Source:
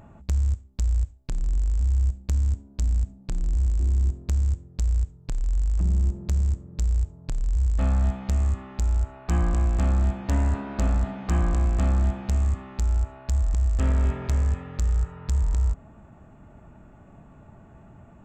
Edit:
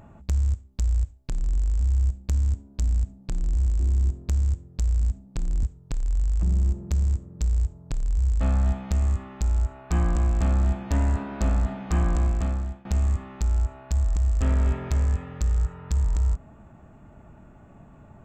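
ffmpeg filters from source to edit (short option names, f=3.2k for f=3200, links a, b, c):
-filter_complex "[0:a]asplit=4[a][b][c][d];[a]atrim=end=5.012[e];[b]atrim=start=2.938:end=3.562[f];[c]atrim=start=5.008:end=12.23,asetpts=PTS-STARTPTS,afade=t=out:st=6.602:d=0.62:silence=0.1[g];[d]atrim=start=12.23,asetpts=PTS-STARTPTS,afade=t=in:d=0.004:c=hsin:silence=0.1[h];[e][f]acrossfade=d=0.004:c1=hsin:c2=hsin[i];[g][h]concat=n=2:v=0:a=1[j];[i][j]acrossfade=d=0.004:c1=hsin:c2=hsin"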